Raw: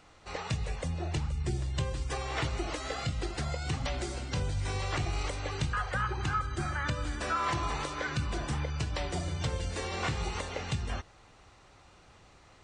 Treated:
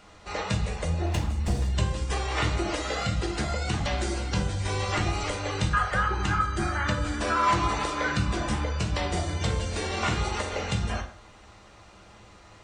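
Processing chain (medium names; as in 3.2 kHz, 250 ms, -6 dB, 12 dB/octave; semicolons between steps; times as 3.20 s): 1.06–1.68 s: comb filter that takes the minimum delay 1.1 ms; on a send: reverberation, pre-delay 5 ms, DRR 1 dB; on the sum: trim +4 dB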